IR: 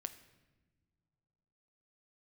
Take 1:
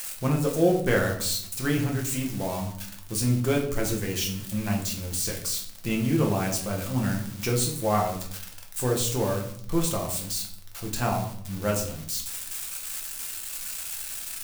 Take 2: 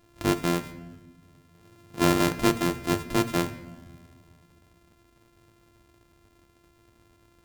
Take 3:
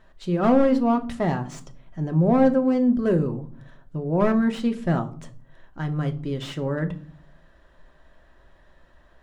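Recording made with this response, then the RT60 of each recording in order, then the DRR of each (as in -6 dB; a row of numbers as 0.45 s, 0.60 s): 2; 0.60 s, no single decay rate, 0.45 s; -0.5 dB, 9.5 dB, 6.0 dB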